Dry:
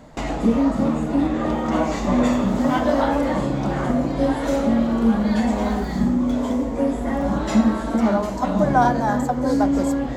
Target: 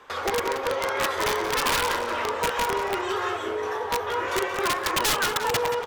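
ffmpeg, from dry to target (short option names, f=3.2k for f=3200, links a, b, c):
-filter_complex "[0:a]acrossover=split=290 3900:gain=0.126 1 0.224[a][b][c];[a][b][c]amix=inputs=3:normalize=0,aeval=exprs='(mod(5.62*val(0)+1,2)-1)/5.62':c=same,asplit=2[d][e];[e]adelay=310,lowpass=f=4.8k:p=1,volume=-9.5dB,asplit=2[f][g];[g]adelay=310,lowpass=f=4.8k:p=1,volume=0.43,asplit=2[h][i];[i]adelay=310,lowpass=f=4.8k:p=1,volume=0.43,asplit=2[j][k];[k]adelay=310,lowpass=f=4.8k:p=1,volume=0.43,asplit=2[l][m];[m]adelay=310,lowpass=f=4.8k:p=1,volume=0.43[n];[d][f][h][j][l][n]amix=inputs=6:normalize=0,asetrate=76440,aresample=44100,volume=-2dB"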